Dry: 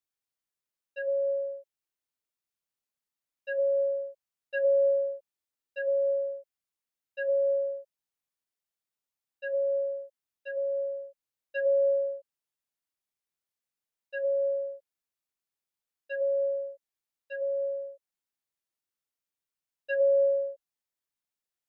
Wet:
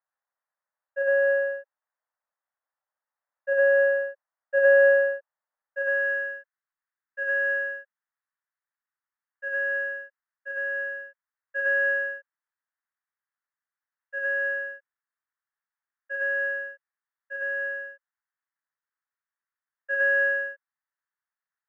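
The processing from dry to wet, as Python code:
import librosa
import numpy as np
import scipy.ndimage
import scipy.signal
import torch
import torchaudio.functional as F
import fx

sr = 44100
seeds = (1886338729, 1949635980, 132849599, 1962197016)

y = fx.halfwave_hold(x, sr)
y = scipy.signal.sosfilt(scipy.signal.ellip(3, 1.0, 40, [510.0, 1800.0], 'bandpass', fs=sr, output='sos'), y)
y = fx.filter_sweep_highpass(y, sr, from_hz=690.0, to_hz=1400.0, start_s=5.58, end_s=6.09, q=1.0)
y = y * 10.0 ** (6.0 / 20.0)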